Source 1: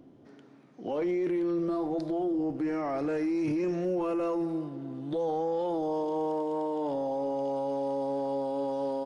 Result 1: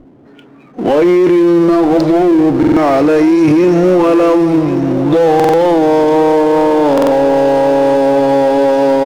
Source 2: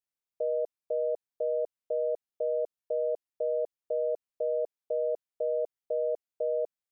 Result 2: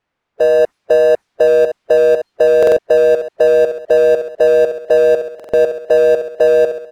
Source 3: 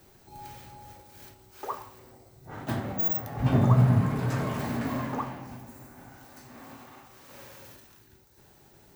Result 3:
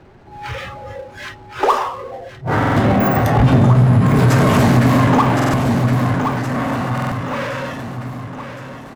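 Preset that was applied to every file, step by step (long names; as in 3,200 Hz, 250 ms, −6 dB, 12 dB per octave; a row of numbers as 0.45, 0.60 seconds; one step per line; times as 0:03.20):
noise reduction from a noise print of the clip's start 19 dB
low-pass that shuts in the quiet parts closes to 2,000 Hz, open at −25.5 dBFS
repeating echo 1,067 ms, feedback 37%, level −14 dB
automatic gain control gain up to 5 dB
power curve on the samples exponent 0.7
downward compressor 5 to 1, threshold −21 dBFS
buffer that repeats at 0:02.58/0:05.35/0:06.93, samples 2,048, times 3
normalise the peak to −3 dBFS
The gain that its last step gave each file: +15.0, +15.0, +11.5 decibels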